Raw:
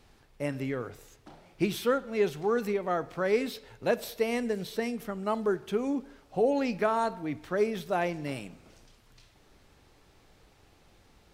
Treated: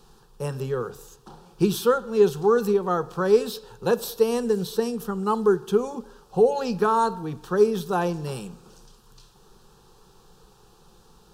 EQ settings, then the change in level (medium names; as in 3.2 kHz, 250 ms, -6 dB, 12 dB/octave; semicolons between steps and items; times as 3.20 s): static phaser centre 420 Hz, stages 8; +9.0 dB